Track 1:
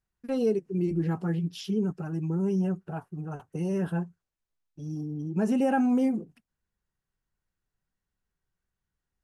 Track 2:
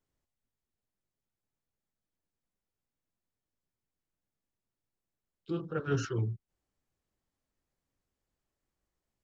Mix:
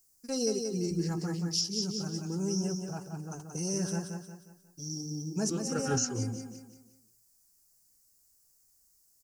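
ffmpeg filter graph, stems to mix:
-filter_complex "[0:a]lowpass=f=5100:t=q:w=3,volume=0.531,asplit=2[s0][s1];[s1]volume=0.531[s2];[1:a]volume=1,asplit=3[s3][s4][s5];[s4]volume=0.126[s6];[s5]apad=whole_len=407248[s7];[s0][s7]sidechaincompress=threshold=0.00316:ratio=8:attack=16:release=247[s8];[s2][s6]amix=inputs=2:normalize=0,aecho=0:1:179|358|537|716|895:1|0.39|0.152|0.0593|0.0231[s9];[s8][s3][s9]amix=inputs=3:normalize=0,aexciter=amount=11.4:drive=8.5:freq=5200,alimiter=limit=0.112:level=0:latency=1:release=440"

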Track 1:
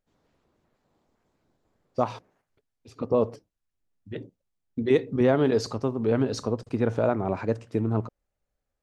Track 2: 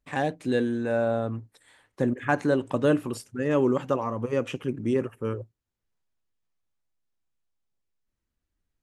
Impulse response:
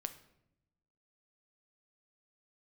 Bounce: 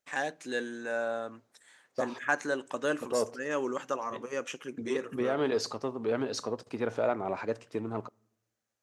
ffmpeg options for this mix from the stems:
-filter_complex "[0:a]asoftclip=type=tanh:threshold=0.299,volume=0.891,asplit=2[s0][s1];[s1]volume=0.15[s2];[1:a]equalizer=f=100:t=o:w=0.67:g=-10,equalizer=f=1600:t=o:w=0.67:g=5,equalizer=f=6300:t=o:w=0.67:g=11,volume=0.562,asplit=3[s3][s4][s5];[s4]volume=0.158[s6];[s5]apad=whole_len=389072[s7];[s0][s7]sidechaincompress=threshold=0.0178:ratio=8:attack=16:release=124[s8];[2:a]atrim=start_sample=2205[s9];[s2][s6]amix=inputs=2:normalize=0[s10];[s10][s9]afir=irnorm=-1:irlink=0[s11];[s8][s3][s11]amix=inputs=3:normalize=0,highpass=f=640:p=1"

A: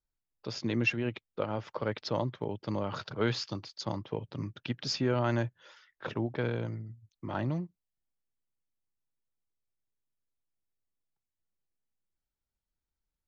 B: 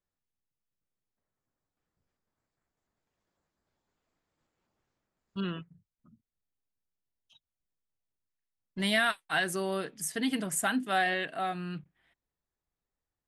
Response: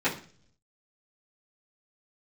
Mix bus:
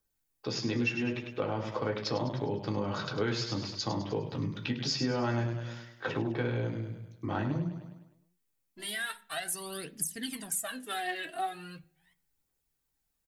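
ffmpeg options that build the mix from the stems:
-filter_complex "[0:a]volume=1,asplit=4[s0][s1][s2][s3];[s1]volume=0.355[s4];[s2]volume=0.531[s5];[1:a]highshelf=f=5900:g=6.5,alimiter=limit=0.0891:level=0:latency=1:release=280,aphaser=in_gain=1:out_gain=1:delay=3.1:decay=0.76:speed=0.4:type=triangular,volume=0.422,asplit=2[s6][s7];[s7]volume=0.0891[s8];[s3]apad=whole_len=585366[s9];[s6][s9]sidechaincompress=threshold=0.00282:ratio=8:attack=16:release=1090[s10];[2:a]atrim=start_sample=2205[s11];[s4][s8]amix=inputs=2:normalize=0[s12];[s12][s11]afir=irnorm=-1:irlink=0[s13];[s5]aecho=0:1:102|204|306|408|510|612|714:1|0.49|0.24|0.118|0.0576|0.0282|0.0138[s14];[s0][s10][s13][s14]amix=inputs=4:normalize=0,highshelf=f=5900:g=10,acompressor=threshold=0.0282:ratio=2.5"

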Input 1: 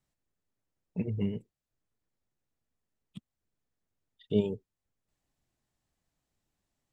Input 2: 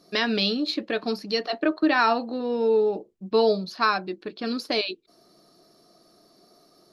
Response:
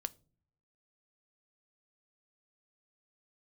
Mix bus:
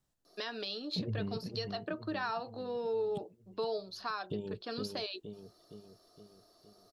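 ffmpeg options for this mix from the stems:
-filter_complex "[0:a]acompressor=threshold=0.0316:ratio=6,volume=1.26,asplit=2[s0][s1];[s1]volume=0.355[s2];[1:a]acompressor=threshold=0.0447:ratio=2,highpass=390,adelay=250,volume=0.531[s3];[s2]aecho=0:1:465|930|1395|1860|2325|2790|3255|3720:1|0.53|0.281|0.149|0.0789|0.0418|0.0222|0.0117[s4];[s0][s3][s4]amix=inputs=3:normalize=0,equalizer=f=2200:w=3.2:g=-7.5,alimiter=level_in=1.26:limit=0.0631:level=0:latency=1:release=318,volume=0.794"

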